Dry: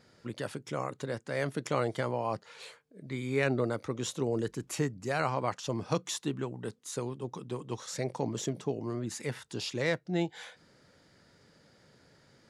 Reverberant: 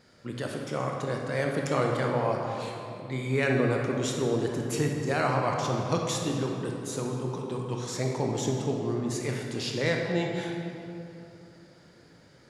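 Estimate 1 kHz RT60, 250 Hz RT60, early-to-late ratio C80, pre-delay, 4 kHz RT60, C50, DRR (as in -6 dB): 2.8 s, 3.2 s, 2.5 dB, 19 ms, 1.7 s, 1.5 dB, 0.5 dB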